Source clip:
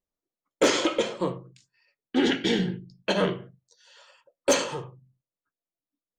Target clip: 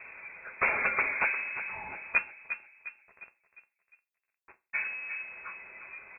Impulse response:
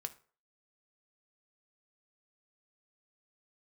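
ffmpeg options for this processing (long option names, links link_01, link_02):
-filter_complex "[0:a]aeval=exprs='val(0)+0.5*0.015*sgn(val(0))':channel_layout=same,highpass=74,acompressor=threshold=-25dB:ratio=3,aeval=exprs='(mod(9.44*val(0)+1,2)-1)/9.44':channel_layout=same,asplit=3[link_01][link_02][link_03];[link_01]afade=type=out:start_time=2.17:duration=0.02[link_04];[link_02]acrusher=bits=2:mix=0:aa=0.5,afade=type=in:start_time=2.17:duration=0.02,afade=type=out:start_time=4.73:duration=0.02[link_05];[link_03]afade=type=in:start_time=4.73:duration=0.02[link_06];[link_04][link_05][link_06]amix=inputs=3:normalize=0,asplit=2[link_07][link_08];[link_08]adelay=354,lowpass=frequency=1600:poles=1,volume=-9dB,asplit=2[link_09][link_10];[link_10]adelay=354,lowpass=frequency=1600:poles=1,volume=0.48,asplit=2[link_11][link_12];[link_12]adelay=354,lowpass=frequency=1600:poles=1,volume=0.48,asplit=2[link_13][link_14];[link_14]adelay=354,lowpass=frequency=1600:poles=1,volume=0.48,asplit=2[link_15][link_16];[link_16]adelay=354,lowpass=frequency=1600:poles=1,volume=0.48[link_17];[link_07][link_09][link_11][link_13][link_15][link_17]amix=inputs=6:normalize=0[link_18];[1:a]atrim=start_sample=2205,asetrate=70560,aresample=44100[link_19];[link_18][link_19]afir=irnorm=-1:irlink=0,lowpass=frequency=2300:width_type=q:width=0.5098,lowpass=frequency=2300:width_type=q:width=0.6013,lowpass=frequency=2300:width_type=q:width=0.9,lowpass=frequency=2300:width_type=q:width=2.563,afreqshift=-2700,volume=8.5dB" -ar 44100 -c:a nellymoser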